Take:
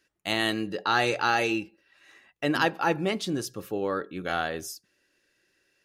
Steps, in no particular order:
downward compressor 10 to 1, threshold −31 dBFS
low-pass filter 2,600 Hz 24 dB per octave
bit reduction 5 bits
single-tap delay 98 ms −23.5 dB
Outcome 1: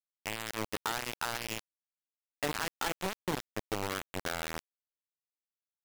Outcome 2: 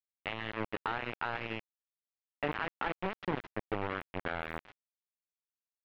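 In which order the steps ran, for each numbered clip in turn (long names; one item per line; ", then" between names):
single-tap delay, then downward compressor, then low-pass filter, then bit reduction
downward compressor, then single-tap delay, then bit reduction, then low-pass filter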